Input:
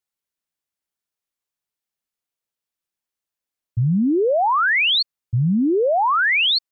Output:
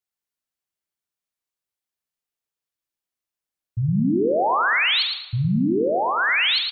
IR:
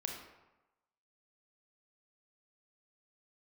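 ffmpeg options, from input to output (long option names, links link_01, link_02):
-filter_complex "[0:a]asettb=1/sr,asplit=3[link_01][link_02][link_03];[link_01]atrim=end=5.464[link_04];[link_02]atrim=start=5.46:end=6.18,asetpts=PTS-STARTPTS,afade=type=in:duration=0.004:curve=qsin,afade=type=out:start_time=0.716:duration=0.004:curve=qsin,equalizer=frequency=3600:width_type=o:width=2.8:gain=-7.5[link_05];[link_03]atrim=start=6.176[link_06];[link_04][link_05]acrossfade=duration=0.004:curve1=hsin:curve2=qsin[link_07];[link_07][link_06]acrossfade=duration=0.004:curve1=qsin:curve2=hsin,aecho=1:1:111|222|333|444:0.562|0.157|0.0441|0.0123,asplit=2[link_08][link_09];[1:a]atrim=start_sample=2205,adelay=46[link_10];[link_09][link_10]afir=irnorm=-1:irlink=0,volume=-7.5dB[link_11];[link_08][link_11]amix=inputs=2:normalize=0,volume=-4dB"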